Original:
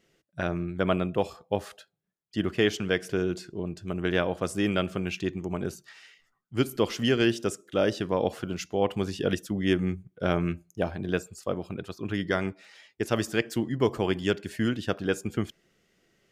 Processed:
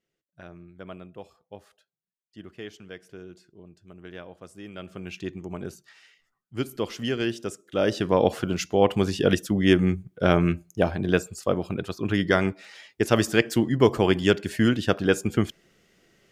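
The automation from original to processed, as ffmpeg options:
-af "volume=6dB,afade=t=in:st=4.72:d=0.53:silence=0.251189,afade=t=in:st=7.63:d=0.53:silence=0.334965"

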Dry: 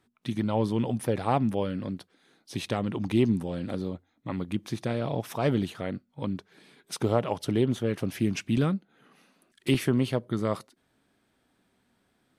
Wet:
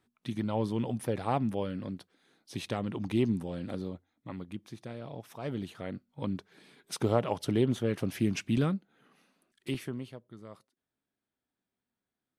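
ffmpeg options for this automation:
-af "volume=6dB,afade=t=out:st=3.8:d=0.91:silence=0.398107,afade=t=in:st=5.41:d=0.93:silence=0.298538,afade=t=out:st=8.43:d=1.28:silence=0.398107,afade=t=out:st=9.71:d=0.49:silence=0.316228"

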